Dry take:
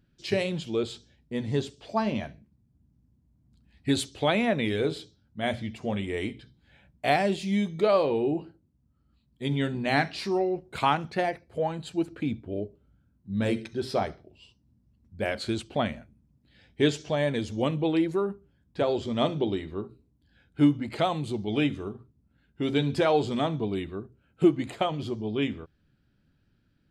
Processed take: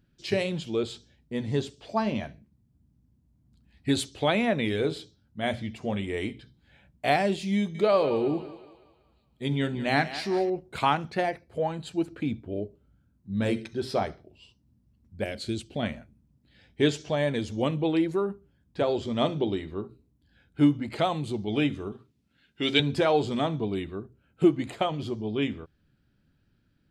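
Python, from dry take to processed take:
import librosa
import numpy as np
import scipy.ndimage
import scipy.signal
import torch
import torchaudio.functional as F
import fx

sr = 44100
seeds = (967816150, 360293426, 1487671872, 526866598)

y = fx.echo_thinned(x, sr, ms=186, feedback_pct=51, hz=420.0, wet_db=-12.5, at=(7.56, 10.5))
y = fx.peak_eq(y, sr, hz=1100.0, db=-13.0, octaves=1.6, at=(15.24, 15.83))
y = fx.weighting(y, sr, curve='D', at=(21.92, 22.8))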